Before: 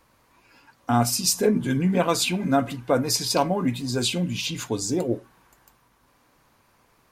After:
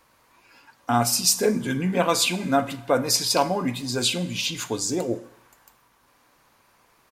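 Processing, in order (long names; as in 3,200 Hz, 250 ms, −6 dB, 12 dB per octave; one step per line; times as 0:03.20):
low-shelf EQ 350 Hz −7.5 dB
slap from a distant wall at 22 metres, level −29 dB
four-comb reverb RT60 0.73 s, combs from 33 ms, DRR 15.5 dB
level +2.5 dB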